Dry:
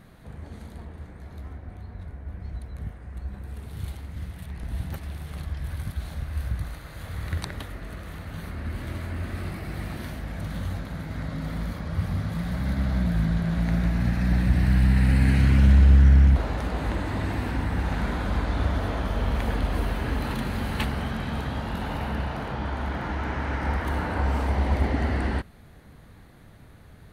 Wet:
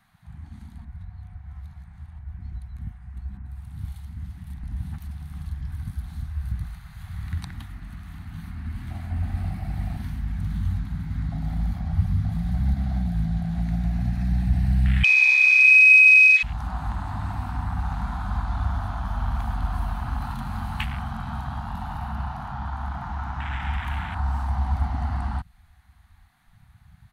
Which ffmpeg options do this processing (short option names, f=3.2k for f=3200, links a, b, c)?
-filter_complex "[0:a]asettb=1/sr,asplit=3[a][b][c];[a]atrim=end=3.374[d];[b]atrim=start=3.37:end=6.52,asetpts=PTS-STARTPTS,afade=t=in:d=0.004:c=qsin,afade=t=out:st=3.146:d=0.004:c=qsin,acrossover=split=2600[e][f];[f]adelay=80[g];[e][g]amix=inputs=2:normalize=0,atrim=end_sample=138915[h];[c]atrim=start=6.516[i];[d][h]acrossfade=d=0.004:c1=hsin:c2=qsin[j];[j][i]acrossfade=d=0.004:c1=qsin:c2=hsin,asettb=1/sr,asplit=3[k][l][m];[k]atrim=end=9.104[n];[l]atrim=start=9.1:end=12.74,asetpts=PTS-STARTPTS,afade=t=in:d=0.004:c=qsin,afade=t=out:st=3.636:d=0.004:c=qsin,lowshelf=f=110:g=8.5[o];[m]atrim=start=12.736[p];[n][o]acrossfade=d=0.004:c1=hsin:c2=qsin[q];[q][p]acrossfade=d=0.004:c1=qsin:c2=hsin,asettb=1/sr,asplit=3[r][s][t];[r]atrim=end=15.034[u];[s]atrim=start=15.03:end=16.43,asetpts=PTS-STARTPTS,afade=t=in:d=0.004:c=qsin,afade=t=out:st=1.396:d=0.004:c=qsin,lowpass=f=2.2k:t=q:w=0.5098,lowpass=f=2.2k:t=q:w=0.6013,lowpass=f=2.2k:t=q:w=0.9,lowpass=f=2.2k:t=q:w=2.563,afreqshift=-2600[v];[t]atrim=start=16.426[w];[u][v]acrossfade=d=0.004:c1=hsin:c2=qsin[x];[x][w]acrossfade=d=0.004:c1=qsin:c2=hsin,asplit=3[y][z][aa];[y]atrim=end=0.852[ab];[z]atrim=start=0.848:end=2.192,asetpts=PTS-STARTPTS,areverse[ac];[aa]atrim=start=2.188[ad];[ab][ac]acrossfade=d=0.004:c1=hsin:c2=hsin[ae];[ae][ad]acrossfade=d=0.004:c1=hsin:c2=hsin,afwtdn=0.0251,firequalizer=gain_entry='entry(220,0);entry(480,-25);entry(730,10)':delay=0.05:min_phase=1,acrossover=split=170|3000[af][ag][ah];[ag]acompressor=threshold=-34dB:ratio=6[ai];[af][ai][ah]amix=inputs=3:normalize=0"